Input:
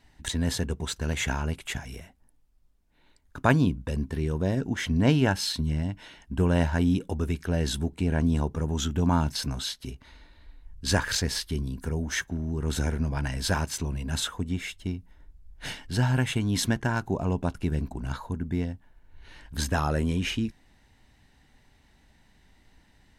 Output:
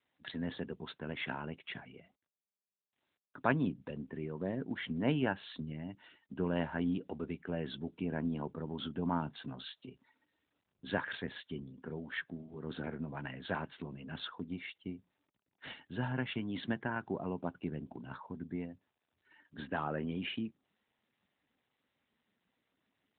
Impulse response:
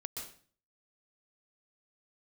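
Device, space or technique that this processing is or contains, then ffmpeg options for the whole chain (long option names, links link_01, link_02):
mobile call with aggressive noise cancelling: -af "highpass=180,afftdn=noise_reduction=21:noise_floor=-49,volume=-7.5dB" -ar 8000 -c:a libopencore_amrnb -b:a 12200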